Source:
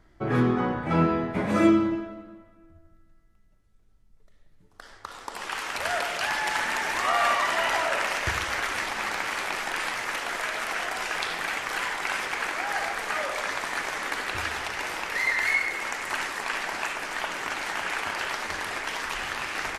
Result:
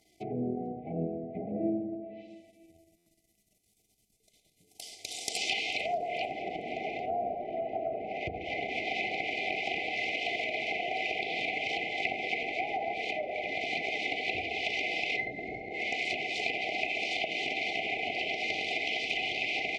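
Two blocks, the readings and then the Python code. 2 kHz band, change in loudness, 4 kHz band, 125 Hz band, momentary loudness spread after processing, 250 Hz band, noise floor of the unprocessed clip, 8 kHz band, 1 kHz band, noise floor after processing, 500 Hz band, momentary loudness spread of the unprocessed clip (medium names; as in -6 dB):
-5.5 dB, -5.5 dB, -1.5 dB, -11.5 dB, 7 LU, -9.5 dB, -58 dBFS, -10.0 dB, -7.0 dB, -72 dBFS, -3.0 dB, 8 LU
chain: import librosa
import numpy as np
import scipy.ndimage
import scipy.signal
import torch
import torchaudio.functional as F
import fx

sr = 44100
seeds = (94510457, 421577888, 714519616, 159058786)

y = np.where(x < 0.0, 10.0 ** (-7.0 / 20.0) * x, x)
y = fx.env_lowpass_down(y, sr, base_hz=620.0, full_db=-24.5)
y = fx.brickwall_bandstop(y, sr, low_hz=800.0, high_hz=2000.0)
y = fx.env_lowpass_down(y, sr, base_hz=1200.0, full_db=-30.0)
y = fx.dynamic_eq(y, sr, hz=320.0, q=4.7, threshold_db=-48.0, ratio=4.0, max_db=-6)
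y = fx.rider(y, sr, range_db=4, speed_s=0.5)
y = fx.riaa(y, sr, side='recording')
y = fx.notch_comb(y, sr, f0_hz=550.0)
y = fx.echo_wet_highpass(y, sr, ms=444, feedback_pct=30, hz=5600.0, wet_db=-21.5)
y = fx.buffer_glitch(y, sr, at_s=(2.97,), block=512, repeats=7)
y = y * 10.0 ** (5.0 / 20.0)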